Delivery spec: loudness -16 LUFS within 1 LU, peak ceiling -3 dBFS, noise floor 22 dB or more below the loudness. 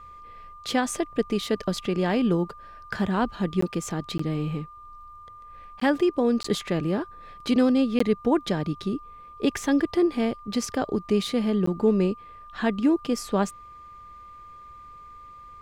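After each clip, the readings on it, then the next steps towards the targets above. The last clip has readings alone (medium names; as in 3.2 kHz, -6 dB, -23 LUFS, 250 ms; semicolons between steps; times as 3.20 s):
dropouts 6; longest dropout 14 ms; steady tone 1.2 kHz; tone level -43 dBFS; loudness -25.5 LUFS; peak level -10.5 dBFS; loudness target -16.0 LUFS
-> interpolate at 3.61/4.18/5.80/6.43/7.99/11.66 s, 14 ms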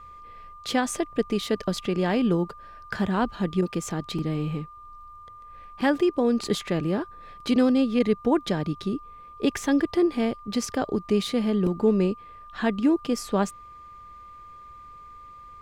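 dropouts 0; steady tone 1.2 kHz; tone level -43 dBFS
-> band-stop 1.2 kHz, Q 30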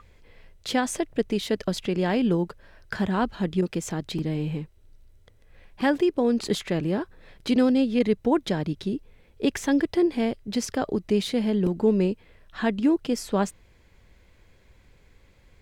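steady tone not found; loudness -25.5 LUFS; peak level -10.5 dBFS; loudness target -16.0 LUFS
-> trim +9.5 dB; peak limiter -3 dBFS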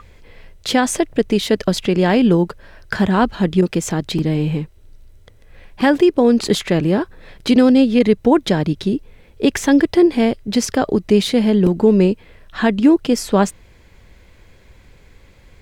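loudness -16.5 LUFS; peak level -3.0 dBFS; noise floor -48 dBFS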